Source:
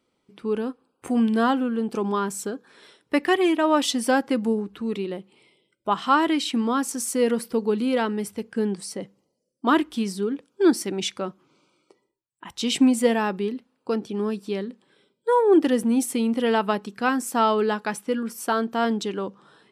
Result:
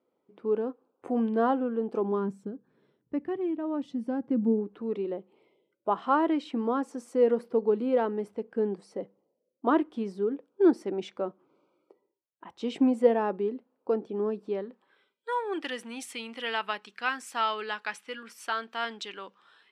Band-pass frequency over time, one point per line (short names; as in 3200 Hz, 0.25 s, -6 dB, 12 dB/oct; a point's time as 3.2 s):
band-pass, Q 1.1
2 s 530 Hz
2.52 s 120 Hz
4.19 s 120 Hz
4.75 s 530 Hz
14.47 s 530 Hz
15.29 s 2400 Hz